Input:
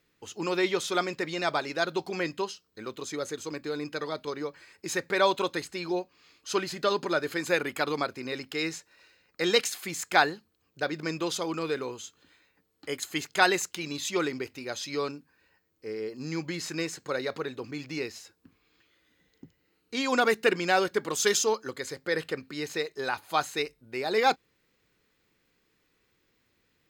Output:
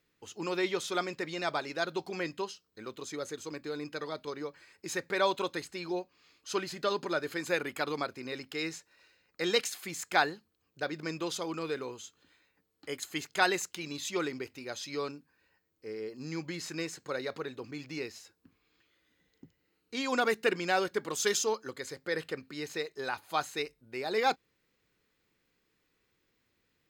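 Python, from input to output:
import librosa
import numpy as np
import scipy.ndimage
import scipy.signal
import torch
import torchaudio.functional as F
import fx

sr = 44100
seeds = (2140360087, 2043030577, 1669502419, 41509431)

y = F.gain(torch.from_numpy(x), -4.5).numpy()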